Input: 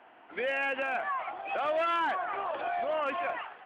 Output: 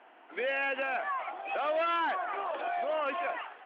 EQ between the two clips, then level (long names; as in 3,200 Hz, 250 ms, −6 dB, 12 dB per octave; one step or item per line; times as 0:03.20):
Chebyshev band-pass filter 300–3,700 Hz, order 2
0.0 dB